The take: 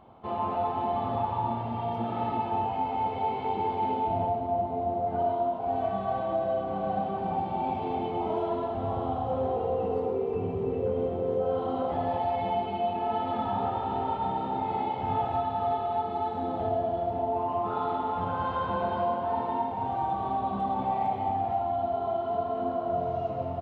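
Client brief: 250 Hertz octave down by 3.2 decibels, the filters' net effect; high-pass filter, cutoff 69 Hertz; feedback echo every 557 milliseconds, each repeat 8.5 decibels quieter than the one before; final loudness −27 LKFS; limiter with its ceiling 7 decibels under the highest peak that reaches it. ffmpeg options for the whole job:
ffmpeg -i in.wav -af "highpass=69,equalizer=frequency=250:width_type=o:gain=-4,alimiter=level_in=0.5dB:limit=-24dB:level=0:latency=1,volume=-0.5dB,aecho=1:1:557|1114|1671|2228:0.376|0.143|0.0543|0.0206,volume=5dB" out.wav

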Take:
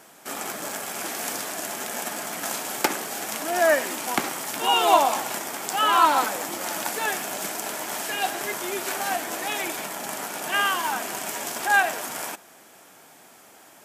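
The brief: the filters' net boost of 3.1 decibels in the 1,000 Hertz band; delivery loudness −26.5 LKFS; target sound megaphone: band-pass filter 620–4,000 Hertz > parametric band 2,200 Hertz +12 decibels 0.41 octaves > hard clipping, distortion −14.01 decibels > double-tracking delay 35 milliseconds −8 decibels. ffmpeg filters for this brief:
ffmpeg -i in.wav -filter_complex "[0:a]highpass=620,lowpass=4000,equalizer=frequency=1000:width_type=o:gain=4.5,equalizer=frequency=2200:width_type=o:width=0.41:gain=12,asoftclip=type=hard:threshold=-12dB,asplit=2[link_01][link_02];[link_02]adelay=35,volume=-8dB[link_03];[link_01][link_03]amix=inputs=2:normalize=0,volume=-4dB" out.wav

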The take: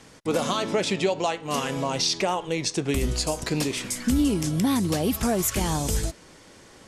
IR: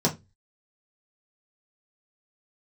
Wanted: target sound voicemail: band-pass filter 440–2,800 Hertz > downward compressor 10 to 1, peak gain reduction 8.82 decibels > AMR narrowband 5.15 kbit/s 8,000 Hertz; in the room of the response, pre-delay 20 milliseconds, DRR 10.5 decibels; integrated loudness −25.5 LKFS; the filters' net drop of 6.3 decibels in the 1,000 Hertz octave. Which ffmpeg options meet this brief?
-filter_complex "[0:a]equalizer=frequency=1000:width_type=o:gain=-8,asplit=2[link_01][link_02];[1:a]atrim=start_sample=2205,adelay=20[link_03];[link_02][link_03]afir=irnorm=-1:irlink=0,volume=-22.5dB[link_04];[link_01][link_04]amix=inputs=2:normalize=0,highpass=440,lowpass=2800,acompressor=threshold=-31dB:ratio=10,volume=13dB" -ar 8000 -c:a libopencore_amrnb -b:a 5150

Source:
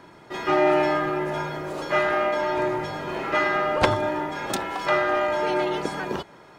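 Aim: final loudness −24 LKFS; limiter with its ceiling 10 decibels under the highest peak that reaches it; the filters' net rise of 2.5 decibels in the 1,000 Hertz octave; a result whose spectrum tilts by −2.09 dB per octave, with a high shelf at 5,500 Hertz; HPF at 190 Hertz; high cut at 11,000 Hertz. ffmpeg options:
ffmpeg -i in.wav -af "highpass=190,lowpass=11000,equalizer=frequency=1000:width_type=o:gain=3,highshelf=frequency=5500:gain=4,volume=0.5dB,alimiter=limit=-13.5dB:level=0:latency=1" out.wav

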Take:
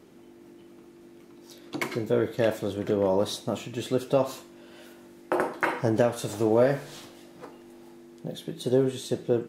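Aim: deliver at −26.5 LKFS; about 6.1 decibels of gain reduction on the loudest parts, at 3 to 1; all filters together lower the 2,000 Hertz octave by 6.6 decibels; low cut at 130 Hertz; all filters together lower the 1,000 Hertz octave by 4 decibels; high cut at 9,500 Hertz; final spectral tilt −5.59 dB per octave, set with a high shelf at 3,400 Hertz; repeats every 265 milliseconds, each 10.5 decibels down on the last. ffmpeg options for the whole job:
ffmpeg -i in.wav -af "highpass=130,lowpass=9500,equalizer=frequency=1000:width_type=o:gain=-3.5,equalizer=frequency=2000:width_type=o:gain=-6,highshelf=frequency=3400:gain=-5,acompressor=threshold=-26dB:ratio=3,aecho=1:1:265|530|795:0.299|0.0896|0.0269,volume=6dB" out.wav

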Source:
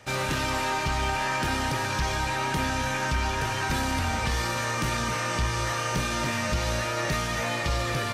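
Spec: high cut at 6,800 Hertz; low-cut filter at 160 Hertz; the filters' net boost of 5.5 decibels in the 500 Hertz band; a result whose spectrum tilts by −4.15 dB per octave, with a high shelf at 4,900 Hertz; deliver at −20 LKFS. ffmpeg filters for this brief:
ffmpeg -i in.wav -af "highpass=160,lowpass=6800,equalizer=frequency=500:width_type=o:gain=7,highshelf=frequency=4900:gain=-5.5,volume=7dB" out.wav

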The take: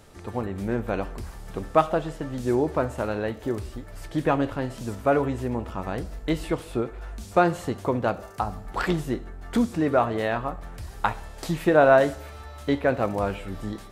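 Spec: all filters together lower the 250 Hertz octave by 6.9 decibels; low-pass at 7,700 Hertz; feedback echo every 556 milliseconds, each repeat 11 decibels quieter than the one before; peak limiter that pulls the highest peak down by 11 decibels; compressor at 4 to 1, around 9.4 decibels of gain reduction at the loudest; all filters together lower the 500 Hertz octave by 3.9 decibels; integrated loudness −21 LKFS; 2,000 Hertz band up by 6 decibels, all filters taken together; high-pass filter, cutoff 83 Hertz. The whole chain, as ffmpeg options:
ffmpeg -i in.wav -af "highpass=83,lowpass=7700,equalizer=frequency=250:width_type=o:gain=-8,equalizer=frequency=500:width_type=o:gain=-4,equalizer=frequency=2000:width_type=o:gain=9,acompressor=threshold=-24dB:ratio=4,alimiter=limit=-18.5dB:level=0:latency=1,aecho=1:1:556|1112|1668:0.282|0.0789|0.0221,volume=12dB" out.wav

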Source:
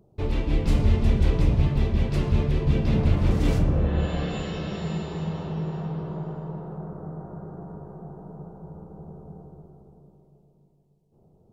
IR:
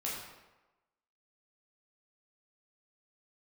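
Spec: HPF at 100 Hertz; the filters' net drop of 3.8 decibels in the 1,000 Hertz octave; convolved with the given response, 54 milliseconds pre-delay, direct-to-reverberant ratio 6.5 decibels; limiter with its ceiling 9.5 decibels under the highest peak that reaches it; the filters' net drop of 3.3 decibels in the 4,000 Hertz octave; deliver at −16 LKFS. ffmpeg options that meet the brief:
-filter_complex "[0:a]highpass=100,equalizer=frequency=1000:width_type=o:gain=-5,equalizer=frequency=4000:width_type=o:gain=-4,alimiter=limit=-23dB:level=0:latency=1,asplit=2[link_01][link_02];[1:a]atrim=start_sample=2205,adelay=54[link_03];[link_02][link_03]afir=irnorm=-1:irlink=0,volume=-9.5dB[link_04];[link_01][link_04]amix=inputs=2:normalize=0,volume=16.5dB"

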